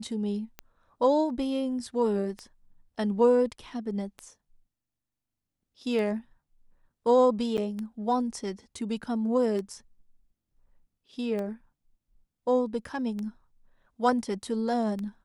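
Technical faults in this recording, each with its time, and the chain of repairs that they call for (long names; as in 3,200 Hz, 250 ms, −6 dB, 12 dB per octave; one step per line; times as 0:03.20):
scratch tick 33 1/3 rpm −23 dBFS
0:07.57–0:07.58: drop-out 8.4 ms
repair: click removal
repair the gap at 0:07.57, 8.4 ms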